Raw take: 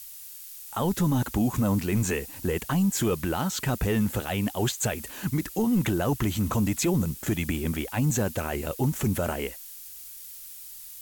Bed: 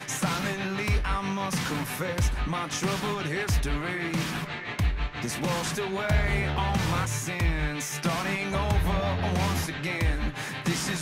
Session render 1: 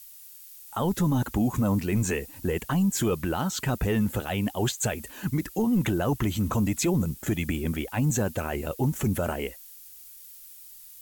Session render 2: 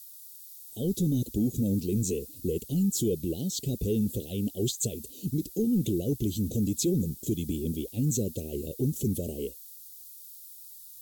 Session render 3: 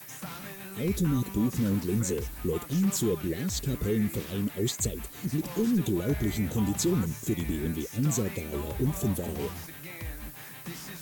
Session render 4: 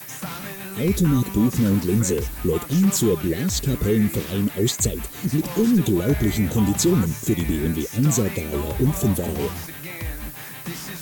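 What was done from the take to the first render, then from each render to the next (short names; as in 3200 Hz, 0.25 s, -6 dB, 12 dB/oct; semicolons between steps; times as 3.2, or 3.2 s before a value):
denoiser 6 dB, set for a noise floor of -43 dBFS
Chebyshev band-stop 450–3700 Hz, order 3; low shelf 93 Hz -7.5 dB
add bed -13 dB
gain +8 dB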